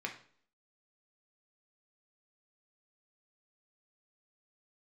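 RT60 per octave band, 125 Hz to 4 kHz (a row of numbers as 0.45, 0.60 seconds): 0.50, 0.60, 0.55, 0.50, 0.45, 0.45 seconds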